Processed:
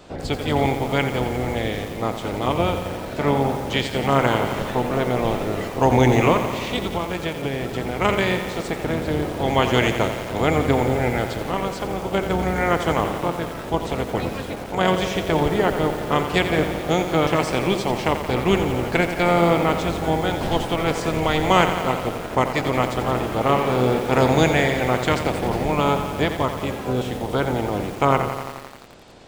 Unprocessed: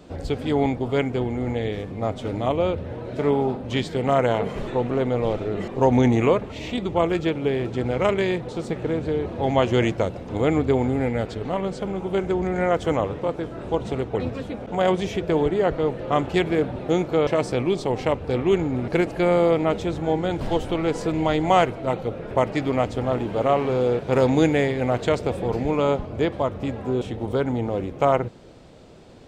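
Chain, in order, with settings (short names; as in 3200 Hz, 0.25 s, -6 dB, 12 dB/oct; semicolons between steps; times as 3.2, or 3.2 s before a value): spectral limiter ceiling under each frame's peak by 12 dB; 6.81–8.01 compressor, threshold -23 dBFS, peak gain reduction 8.5 dB; lo-fi delay 87 ms, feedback 80%, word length 6-bit, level -9 dB; gain +1 dB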